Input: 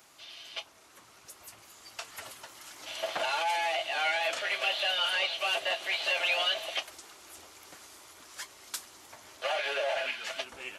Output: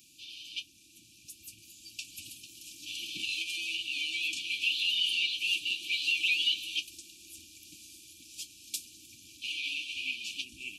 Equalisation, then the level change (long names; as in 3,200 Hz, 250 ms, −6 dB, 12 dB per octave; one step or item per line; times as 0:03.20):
linear-phase brick-wall band-stop 360–2,300 Hz
+1.5 dB